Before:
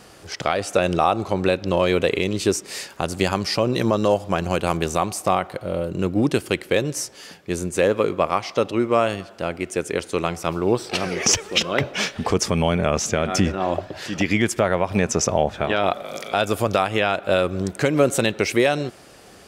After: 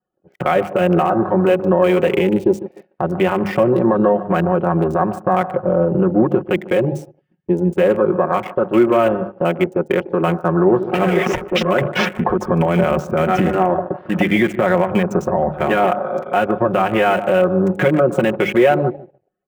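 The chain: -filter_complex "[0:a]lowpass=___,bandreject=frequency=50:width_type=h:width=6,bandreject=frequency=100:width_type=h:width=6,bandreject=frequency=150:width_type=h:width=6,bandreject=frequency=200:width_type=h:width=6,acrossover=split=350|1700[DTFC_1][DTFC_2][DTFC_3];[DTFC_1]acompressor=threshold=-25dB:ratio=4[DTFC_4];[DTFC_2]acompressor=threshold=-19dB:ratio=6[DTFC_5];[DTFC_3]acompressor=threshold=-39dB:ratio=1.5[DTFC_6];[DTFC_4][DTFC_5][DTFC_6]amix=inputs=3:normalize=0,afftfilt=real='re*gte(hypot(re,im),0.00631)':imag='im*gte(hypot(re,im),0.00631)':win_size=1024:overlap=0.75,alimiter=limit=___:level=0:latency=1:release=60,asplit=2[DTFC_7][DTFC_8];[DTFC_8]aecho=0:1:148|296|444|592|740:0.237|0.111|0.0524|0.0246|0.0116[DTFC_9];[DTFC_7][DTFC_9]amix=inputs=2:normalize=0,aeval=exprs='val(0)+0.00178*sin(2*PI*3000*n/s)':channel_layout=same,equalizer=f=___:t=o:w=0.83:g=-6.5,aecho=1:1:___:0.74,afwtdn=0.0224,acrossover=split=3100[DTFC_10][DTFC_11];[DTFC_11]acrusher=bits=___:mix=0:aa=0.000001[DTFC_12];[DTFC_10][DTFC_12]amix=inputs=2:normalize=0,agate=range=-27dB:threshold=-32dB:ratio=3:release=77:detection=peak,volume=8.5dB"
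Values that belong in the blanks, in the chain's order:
7.5k, -15dB, 4.5k, 5.5, 7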